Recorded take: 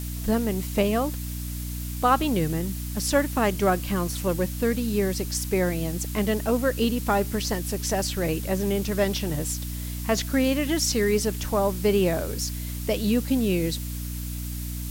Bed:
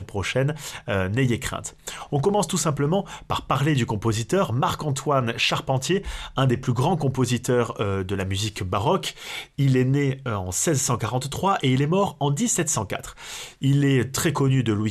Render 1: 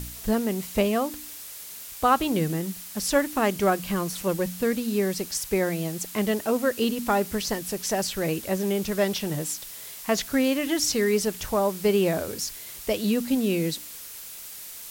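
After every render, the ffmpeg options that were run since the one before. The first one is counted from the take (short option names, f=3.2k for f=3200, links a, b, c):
-af "bandreject=f=60:t=h:w=4,bandreject=f=120:t=h:w=4,bandreject=f=180:t=h:w=4,bandreject=f=240:t=h:w=4,bandreject=f=300:t=h:w=4"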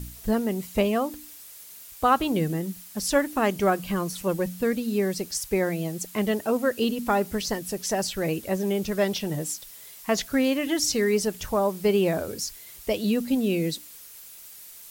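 -af "afftdn=nr=7:nf=-41"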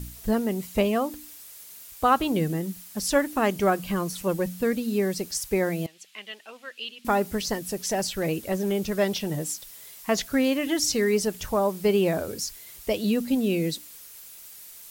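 -filter_complex "[0:a]asettb=1/sr,asplit=3[a][b][c];[a]atrim=end=5.864[d];[b]atrim=start=5.86:end=7.05,asetpts=PTS-STARTPTS,afade=t=in:d=0.004:c=qsin,afade=t=out:st=1.186:d=0.004:c=qsin,bandpass=f=2.9k:t=q:w=2.1[e];[c]atrim=start=7.046[f];[d][e]acrossfade=d=0.004:c1=hsin:c2=qsin[g];[g][f]acrossfade=d=0.004:c1=qsin:c2=hsin,asettb=1/sr,asplit=3[h][i][j];[h]atrim=end=7.694[k];[i]atrim=start=7.69:end=8.72,asetpts=PTS-STARTPTS,afade=t=in:d=0.004:c=qsin,afade=t=out:st=1.026:d=0.004:c=qsin,asoftclip=type=hard:threshold=-19dB[l];[j]atrim=start=8.716[m];[k][l]acrossfade=d=0.004:c1=hsin:c2=qsin[n];[n][m]acrossfade=d=0.004:c1=qsin:c2=hsin"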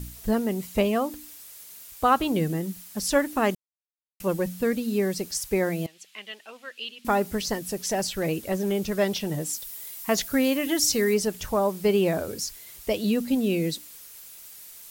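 -filter_complex "[0:a]asettb=1/sr,asplit=3[a][b][c];[a]atrim=end=9.534[d];[b]atrim=start=9.53:end=11.14,asetpts=PTS-STARTPTS,afade=t=in:d=0.004:c=qsin,afade=t=out:st=1.606:d=0.004:c=qsin,highshelf=f=10k:g=9.5[e];[c]atrim=start=11.136[f];[d][e]acrossfade=d=0.004:c1=hsin:c2=qsin[g];[g][f]acrossfade=d=0.004:c1=qsin:c2=hsin,asplit=3[h][i][j];[h]atrim=end=3.55,asetpts=PTS-STARTPTS,afade=t=out:st=3.546:d=0.004:c=hsin[k];[i]atrim=start=3.55:end=4.2,asetpts=PTS-STARTPTS,volume=0[l];[j]atrim=start=4.2,asetpts=PTS-STARTPTS,afade=t=in:d=0.004:c=hsin[m];[k][l][m]concat=n=3:v=0:a=1"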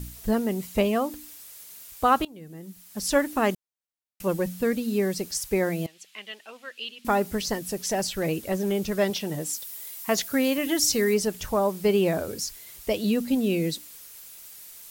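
-filter_complex "[0:a]asettb=1/sr,asplit=3[a][b][c];[a]atrim=end=9.104[d];[b]atrim=start=9.1:end=10.58,asetpts=PTS-STARTPTS,afade=t=in:d=0.004:c=qsin,afade=t=out:st=1.476:d=0.004:c=qsin,highpass=f=150:p=1[e];[c]atrim=start=10.576[f];[d][e]acrossfade=d=0.004:c1=hsin:c2=qsin[g];[g][f]acrossfade=d=0.004:c1=qsin:c2=hsin,asplit=2[h][i];[h]atrim=end=2.25,asetpts=PTS-STARTPTS,afade=t=out:st=2.246:d=0.004:c=hsin:silence=0.0841395[j];[i]atrim=start=2.25,asetpts=PTS-STARTPTS,afade=t=in:d=0.85:c=qua:silence=0.0841395[k];[j][k]concat=n=2:v=0:a=1"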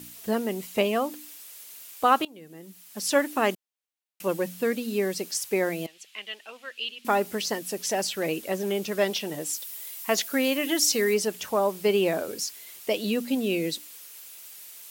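-af "highpass=250,equalizer=f=2.8k:t=o:w=0.73:g=3.5"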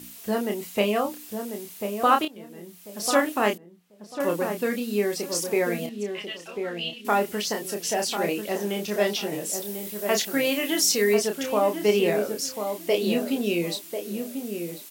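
-filter_complex "[0:a]asplit=2[a][b];[b]adelay=29,volume=-5dB[c];[a][c]amix=inputs=2:normalize=0,asplit=2[d][e];[e]adelay=1043,lowpass=f=1.1k:p=1,volume=-6dB,asplit=2[f][g];[g]adelay=1043,lowpass=f=1.1k:p=1,volume=0.24,asplit=2[h][i];[i]adelay=1043,lowpass=f=1.1k:p=1,volume=0.24[j];[d][f][h][j]amix=inputs=4:normalize=0"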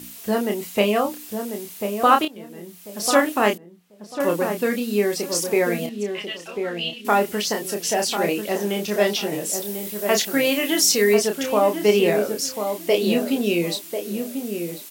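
-af "volume=4dB"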